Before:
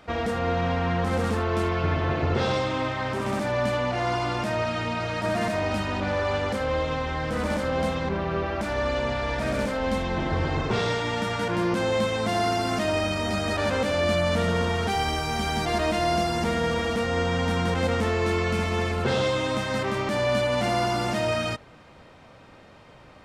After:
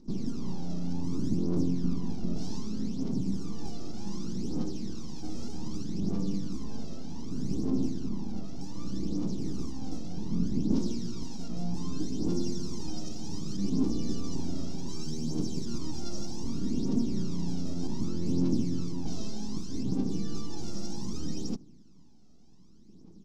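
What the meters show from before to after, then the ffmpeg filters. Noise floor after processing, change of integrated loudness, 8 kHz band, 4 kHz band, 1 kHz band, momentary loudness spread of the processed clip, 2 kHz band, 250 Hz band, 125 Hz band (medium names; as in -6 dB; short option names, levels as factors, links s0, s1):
-51 dBFS, -9.0 dB, -5.0 dB, -13.5 dB, -24.0 dB, 10 LU, under -30 dB, -1.5 dB, -7.0 dB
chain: -af "aeval=exprs='abs(val(0))':c=same,firequalizer=gain_entry='entry(100,0);entry(190,14);entry(300,9);entry(590,-15);entry(850,-13);entry(1700,-27);entry(5500,4);entry(10000,-14)':delay=0.05:min_phase=1,aphaser=in_gain=1:out_gain=1:delay=1.6:decay=0.62:speed=0.65:type=triangular,volume=0.355"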